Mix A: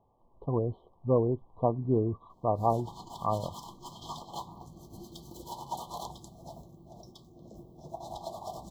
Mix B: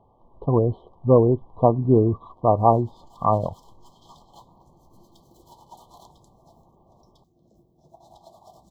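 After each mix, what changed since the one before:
speech +10.0 dB
background −10.0 dB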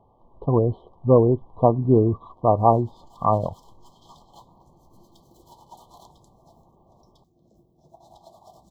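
nothing changed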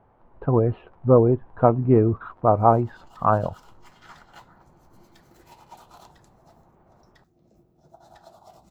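master: remove linear-phase brick-wall band-stop 1,200–3,000 Hz

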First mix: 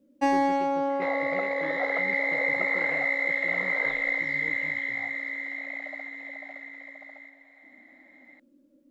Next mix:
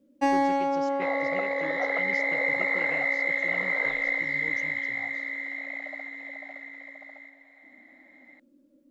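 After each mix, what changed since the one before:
speech: remove high-frequency loss of the air 430 metres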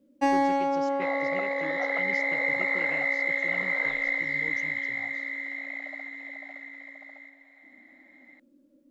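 second sound: add low-shelf EQ 410 Hz −11.5 dB

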